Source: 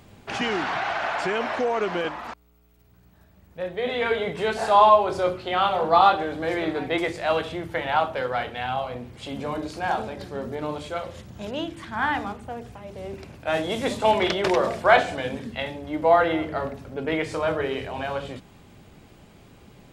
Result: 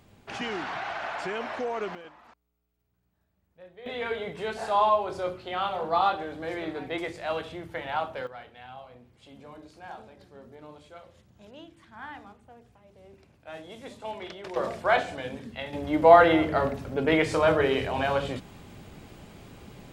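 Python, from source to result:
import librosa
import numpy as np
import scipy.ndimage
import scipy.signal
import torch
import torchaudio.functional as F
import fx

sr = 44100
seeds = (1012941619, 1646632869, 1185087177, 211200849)

y = fx.gain(x, sr, db=fx.steps((0.0, -7.0), (1.95, -19.0), (3.86, -7.5), (8.27, -17.0), (14.56, -6.5), (15.73, 3.0)))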